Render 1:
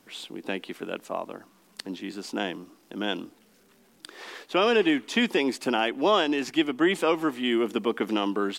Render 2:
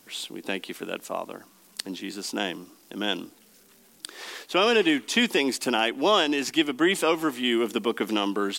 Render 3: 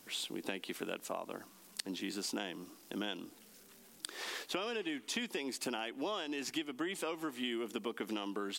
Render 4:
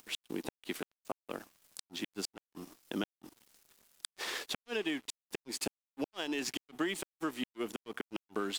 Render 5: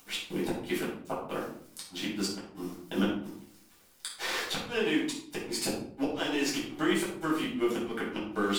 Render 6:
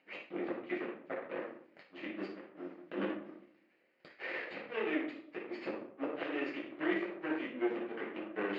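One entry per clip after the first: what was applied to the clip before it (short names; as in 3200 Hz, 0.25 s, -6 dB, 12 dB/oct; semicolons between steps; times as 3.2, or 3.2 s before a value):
high shelf 3900 Hz +10.5 dB
compressor 10:1, threshold -32 dBFS, peak gain reduction 16 dB; gain -3 dB
flipped gate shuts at -27 dBFS, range -37 dB; upward compressor, threshold -56 dBFS; crossover distortion -56 dBFS; gain +5 dB
shoebox room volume 750 m³, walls furnished, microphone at 7.6 m; gain -2.5 dB
minimum comb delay 0.43 ms; speaker cabinet 290–2800 Hz, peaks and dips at 340 Hz +5 dB, 560 Hz +8 dB, 1200 Hz +5 dB, 1900 Hz +5 dB; gain -7 dB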